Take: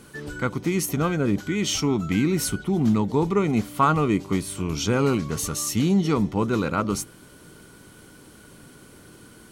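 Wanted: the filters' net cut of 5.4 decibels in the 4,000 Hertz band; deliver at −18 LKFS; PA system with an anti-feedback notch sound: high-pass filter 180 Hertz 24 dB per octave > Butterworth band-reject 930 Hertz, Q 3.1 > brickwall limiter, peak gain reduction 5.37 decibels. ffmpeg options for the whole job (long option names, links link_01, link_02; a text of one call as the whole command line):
ffmpeg -i in.wav -af "highpass=frequency=180:width=0.5412,highpass=frequency=180:width=1.3066,asuperstop=centerf=930:order=8:qfactor=3.1,equalizer=frequency=4000:width_type=o:gain=-8,volume=8.5dB,alimiter=limit=-8dB:level=0:latency=1" out.wav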